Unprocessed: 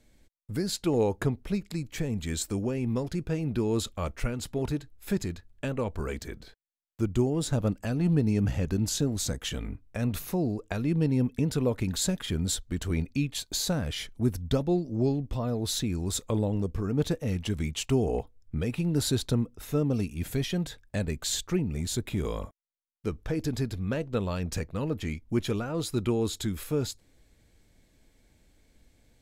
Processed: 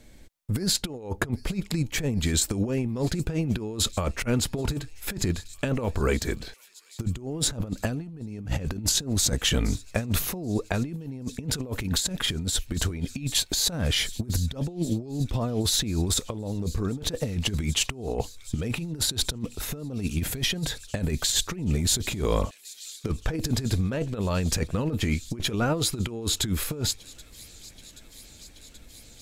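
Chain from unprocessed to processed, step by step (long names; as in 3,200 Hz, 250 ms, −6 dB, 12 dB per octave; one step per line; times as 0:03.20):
delay with a high-pass on its return 779 ms, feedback 82%, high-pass 3,400 Hz, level −19 dB
compressor whose output falls as the input rises −32 dBFS, ratio −0.5
level +6 dB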